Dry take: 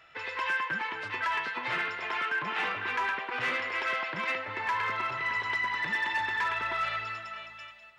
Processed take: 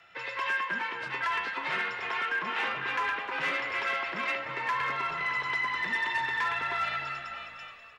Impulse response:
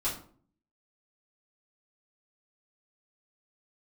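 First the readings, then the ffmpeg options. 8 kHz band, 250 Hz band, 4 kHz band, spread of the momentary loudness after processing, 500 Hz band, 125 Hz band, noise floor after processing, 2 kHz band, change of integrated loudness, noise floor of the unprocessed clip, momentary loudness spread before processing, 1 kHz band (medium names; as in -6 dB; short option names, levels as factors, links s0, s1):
no reading, -0.5 dB, +0.5 dB, 5 LU, 0.0 dB, -1.5 dB, -48 dBFS, 0.0 dB, 0.0 dB, -51 dBFS, 5 LU, 0.0 dB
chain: -filter_complex "[0:a]bandreject=f=60:t=h:w=6,bandreject=f=120:t=h:w=6,bandreject=f=180:t=h:w=6,afreqshift=28,asplit=6[s0][s1][s2][s3][s4][s5];[s1]adelay=303,afreqshift=-65,volume=0.2[s6];[s2]adelay=606,afreqshift=-130,volume=0.0955[s7];[s3]adelay=909,afreqshift=-195,volume=0.0457[s8];[s4]adelay=1212,afreqshift=-260,volume=0.0221[s9];[s5]adelay=1515,afreqshift=-325,volume=0.0106[s10];[s0][s6][s7][s8][s9][s10]amix=inputs=6:normalize=0"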